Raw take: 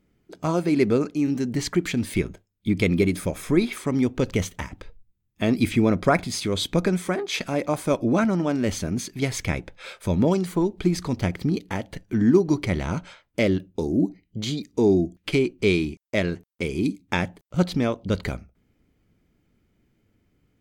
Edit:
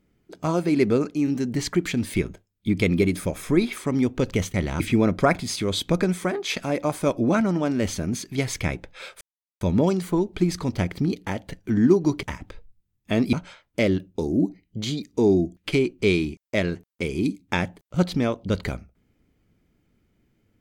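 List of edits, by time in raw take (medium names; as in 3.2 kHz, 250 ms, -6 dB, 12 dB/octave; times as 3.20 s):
4.54–5.64 s: swap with 12.67–12.93 s
10.05 s: insert silence 0.40 s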